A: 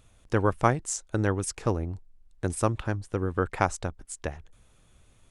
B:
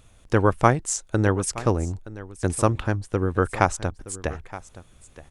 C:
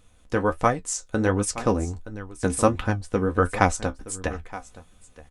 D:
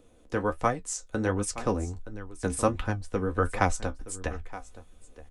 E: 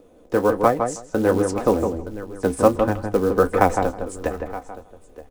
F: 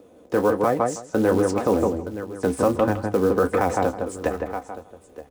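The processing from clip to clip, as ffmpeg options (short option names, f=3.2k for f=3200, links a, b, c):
-af "aecho=1:1:921:0.141,volume=5dB"
-af "flanger=delay=9.6:depth=6.1:regen=44:speed=1.4:shape=triangular,dynaudnorm=f=460:g=5:m=6.5dB,aecho=1:1:4:0.38"
-filter_complex "[0:a]asubboost=boost=2.5:cutoff=78,acrossover=split=370|400|2000[a][b][c][d];[b]acompressor=mode=upward:threshold=-40dB:ratio=2.5[e];[a][e][c][d]amix=inputs=4:normalize=0,volume=-5dB"
-filter_complex "[0:a]equalizer=f=480:w=0.38:g=13,acrusher=bits=6:mode=log:mix=0:aa=0.000001,asplit=2[a][b];[b]adelay=160,lowpass=f=1.6k:p=1,volume=-5dB,asplit=2[c][d];[d]adelay=160,lowpass=f=1.6k:p=1,volume=0.15,asplit=2[e][f];[f]adelay=160,lowpass=f=1.6k:p=1,volume=0.15[g];[c][e][g]amix=inputs=3:normalize=0[h];[a][h]amix=inputs=2:normalize=0,volume=-2dB"
-filter_complex "[0:a]highpass=82,acrossover=split=6300[a][b];[a]alimiter=limit=-11.5dB:level=0:latency=1:release=30[c];[b]asoftclip=type=tanh:threshold=-39.5dB[d];[c][d]amix=inputs=2:normalize=0,volume=1.5dB"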